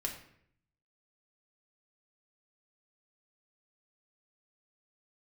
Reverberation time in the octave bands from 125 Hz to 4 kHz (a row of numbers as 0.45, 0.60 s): 1.0, 0.80, 0.70, 0.60, 0.65, 0.50 s